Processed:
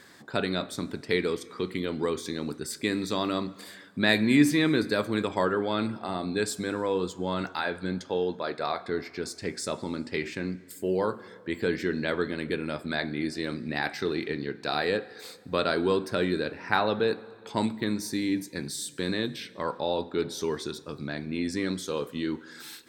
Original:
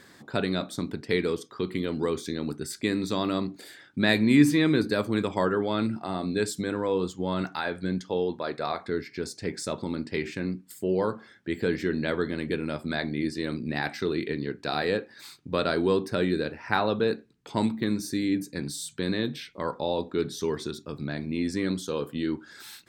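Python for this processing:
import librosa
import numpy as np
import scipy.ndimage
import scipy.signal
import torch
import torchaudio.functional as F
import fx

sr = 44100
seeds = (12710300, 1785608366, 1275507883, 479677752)

y = fx.low_shelf(x, sr, hz=330.0, db=-5.0)
y = fx.rev_plate(y, sr, seeds[0], rt60_s=2.1, hf_ratio=0.75, predelay_ms=0, drr_db=17.5)
y = y * librosa.db_to_amplitude(1.0)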